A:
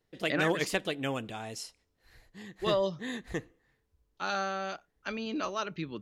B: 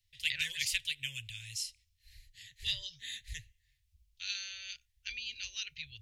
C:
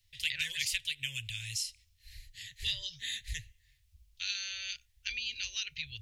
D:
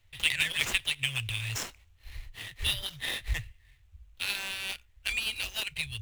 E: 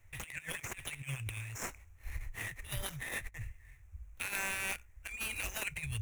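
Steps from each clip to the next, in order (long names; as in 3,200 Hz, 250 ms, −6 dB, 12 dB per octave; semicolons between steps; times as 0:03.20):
inverse Chebyshev band-stop filter 180–1,300 Hz, stop band 40 dB; level +4 dB
downward compressor 2 to 1, threshold −41 dBFS, peak gain reduction 8 dB; level +6.5 dB
running median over 9 samples; level +9 dB
flat-topped bell 3,800 Hz −14.5 dB 1 octave; compressor whose output falls as the input rises −39 dBFS, ratio −0.5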